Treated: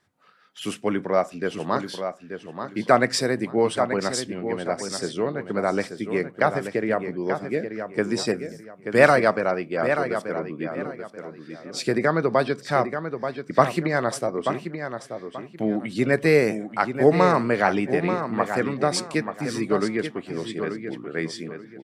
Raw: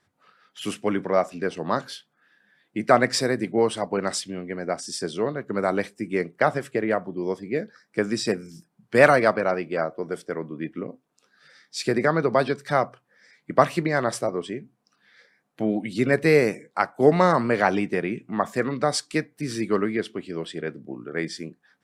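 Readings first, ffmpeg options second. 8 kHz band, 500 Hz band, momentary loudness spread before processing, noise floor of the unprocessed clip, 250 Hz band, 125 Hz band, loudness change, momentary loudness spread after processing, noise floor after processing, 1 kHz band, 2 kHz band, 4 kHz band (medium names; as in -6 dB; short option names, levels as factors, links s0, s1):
0.0 dB, +0.5 dB, 14 LU, -73 dBFS, +0.5 dB, +1.0 dB, +0.5 dB, 14 LU, -48 dBFS, +0.5 dB, +0.5 dB, +0.5 dB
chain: -filter_complex "[0:a]asplit=2[s0][s1];[s1]adelay=883,lowpass=f=4600:p=1,volume=0.398,asplit=2[s2][s3];[s3]adelay=883,lowpass=f=4600:p=1,volume=0.27,asplit=2[s4][s5];[s5]adelay=883,lowpass=f=4600:p=1,volume=0.27[s6];[s0][s2][s4][s6]amix=inputs=4:normalize=0"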